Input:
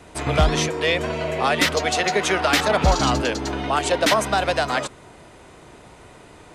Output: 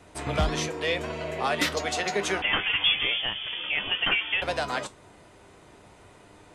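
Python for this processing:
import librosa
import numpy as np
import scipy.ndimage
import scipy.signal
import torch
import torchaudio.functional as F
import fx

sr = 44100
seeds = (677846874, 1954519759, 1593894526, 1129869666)

y = fx.comb_fb(x, sr, f0_hz=100.0, decay_s=0.19, harmonics='all', damping=0.0, mix_pct=60)
y = fx.freq_invert(y, sr, carrier_hz=3400, at=(2.42, 4.42))
y = F.gain(torch.from_numpy(y), -2.5).numpy()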